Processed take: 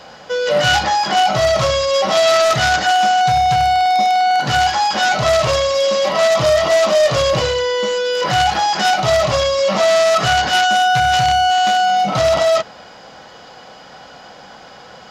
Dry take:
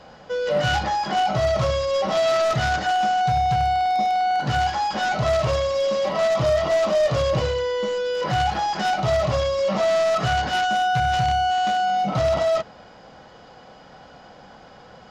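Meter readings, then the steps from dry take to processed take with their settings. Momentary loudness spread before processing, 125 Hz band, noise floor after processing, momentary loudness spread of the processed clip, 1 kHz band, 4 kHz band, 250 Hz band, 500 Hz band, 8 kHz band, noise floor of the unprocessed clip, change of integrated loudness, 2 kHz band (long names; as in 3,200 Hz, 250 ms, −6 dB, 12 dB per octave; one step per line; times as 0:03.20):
3 LU, +1.5 dB, −40 dBFS, 3 LU, +7.0 dB, +11.0 dB, +3.0 dB, +6.0 dB, can't be measured, −47 dBFS, +7.0 dB, +9.0 dB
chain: spectral tilt +2 dB per octave
level +7.5 dB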